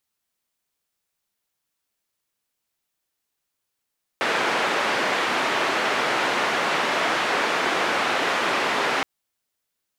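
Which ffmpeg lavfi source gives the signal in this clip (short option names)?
-f lavfi -i "anoisesrc=c=white:d=4.82:r=44100:seed=1,highpass=f=300,lowpass=f=1900,volume=-7.2dB"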